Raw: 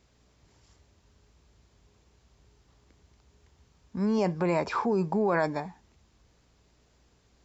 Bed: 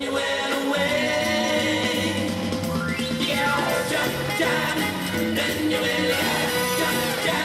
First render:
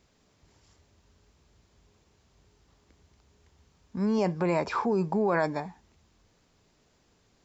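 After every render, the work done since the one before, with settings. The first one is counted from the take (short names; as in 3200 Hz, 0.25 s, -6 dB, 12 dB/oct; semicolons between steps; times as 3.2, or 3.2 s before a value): de-hum 60 Hz, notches 2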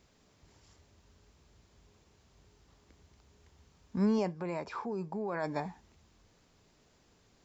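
4.04–5.67 dip -10.5 dB, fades 0.28 s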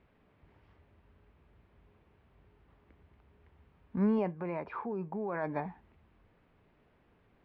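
LPF 2600 Hz 24 dB/oct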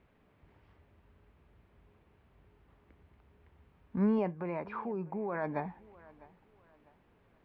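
thinning echo 0.651 s, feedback 35%, high-pass 200 Hz, level -21 dB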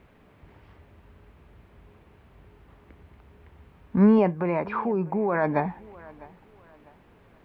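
gain +11 dB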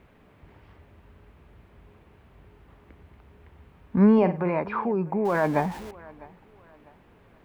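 4.17–4.59 flutter echo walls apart 8.6 m, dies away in 0.3 s; 5.25–5.91 zero-crossing step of -36.5 dBFS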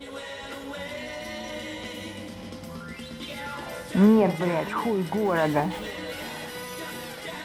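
add bed -13.5 dB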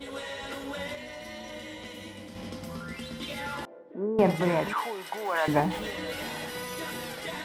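0.95–2.35 gain -5.5 dB; 3.65–4.19 ladder band-pass 410 Hz, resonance 55%; 4.73–5.48 HPF 740 Hz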